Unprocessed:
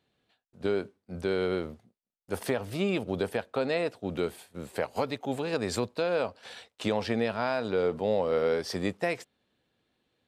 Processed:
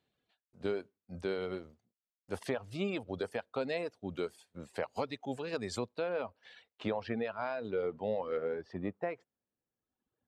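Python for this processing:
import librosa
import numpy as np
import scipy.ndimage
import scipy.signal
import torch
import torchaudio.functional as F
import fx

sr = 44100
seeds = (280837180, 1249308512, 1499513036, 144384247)

y = fx.dereverb_blind(x, sr, rt60_s=1.2)
y = fx.lowpass(y, sr, hz=fx.steps((0.0, 8200.0), (5.99, 3000.0), (8.37, 1500.0)), slope=12)
y = F.gain(torch.from_numpy(y), -5.5).numpy()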